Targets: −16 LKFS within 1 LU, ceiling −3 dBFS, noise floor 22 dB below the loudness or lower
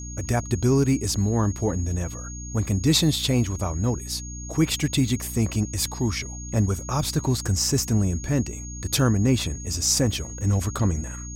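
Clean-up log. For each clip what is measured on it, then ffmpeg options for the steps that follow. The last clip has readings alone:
mains hum 60 Hz; hum harmonics up to 300 Hz; level of the hum −35 dBFS; interfering tone 6,600 Hz; level of the tone −38 dBFS; integrated loudness −24.0 LKFS; sample peak −8.0 dBFS; target loudness −16.0 LKFS
→ -af "bandreject=frequency=60:width_type=h:width=6,bandreject=frequency=120:width_type=h:width=6,bandreject=frequency=180:width_type=h:width=6,bandreject=frequency=240:width_type=h:width=6,bandreject=frequency=300:width_type=h:width=6"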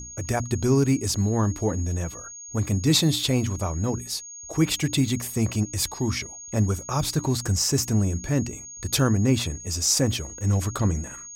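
mains hum none found; interfering tone 6,600 Hz; level of the tone −38 dBFS
→ -af "bandreject=frequency=6600:width=30"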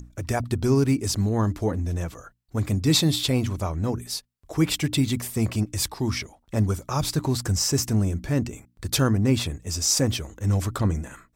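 interfering tone none found; integrated loudness −24.5 LKFS; sample peak −8.0 dBFS; target loudness −16.0 LKFS
→ -af "volume=8.5dB,alimiter=limit=-3dB:level=0:latency=1"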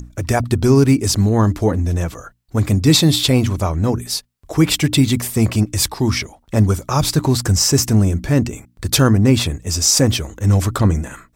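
integrated loudness −16.5 LKFS; sample peak −3.0 dBFS; background noise floor −55 dBFS

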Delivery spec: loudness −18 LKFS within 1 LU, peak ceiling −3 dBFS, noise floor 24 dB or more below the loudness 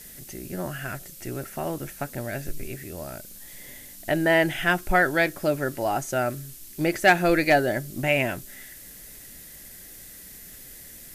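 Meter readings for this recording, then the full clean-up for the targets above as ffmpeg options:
background noise floor −45 dBFS; target noise floor −49 dBFS; integrated loudness −25.0 LKFS; sample peak −7.5 dBFS; target loudness −18.0 LKFS
→ -af "afftdn=noise_reduction=6:noise_floor=-45"
-af "volume=7dB,alimiter=limit=-3dB:level=0:latency=1"

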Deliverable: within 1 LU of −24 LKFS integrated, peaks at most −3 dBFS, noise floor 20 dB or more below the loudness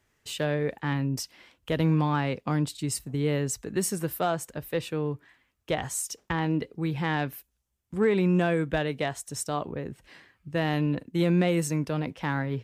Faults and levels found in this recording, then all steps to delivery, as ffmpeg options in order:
integrated loudness −28.5 LKFS; sample peak −12.5 dBFS; target loudness −24.0 LKFS
→ -af "volume=4.5dB"

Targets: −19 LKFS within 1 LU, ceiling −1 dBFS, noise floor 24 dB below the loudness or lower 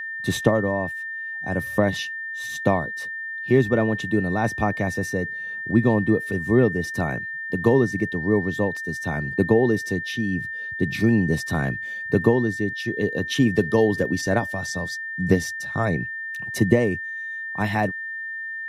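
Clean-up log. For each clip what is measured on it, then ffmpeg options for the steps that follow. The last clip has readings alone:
interfering tone 1,800 Hz; level of the tone −29 dBFS; integrated loudness −23.5 LKFS; sample peak −3.0 dBFS; target loudness −19.0 LKFS
→ -af "bandreject=frequency=1800:width=30"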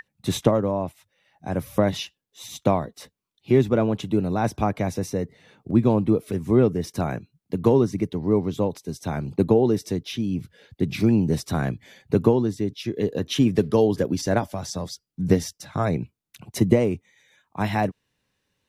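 interfering tone none found; integrated loudness −23.5 LKFS; sample peak −3.0 dBFS; target loudness −19.0 LKFS
→ -af "volume=4.5dB,alimiter=limit=-1dB:level=0:latency=1"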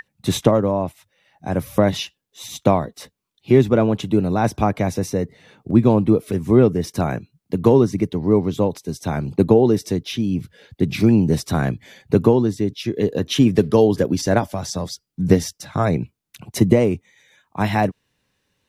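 integrated loudness −19.5 LKFS; sample peak −1.0 dBFS; background noise floor −75 dBFS

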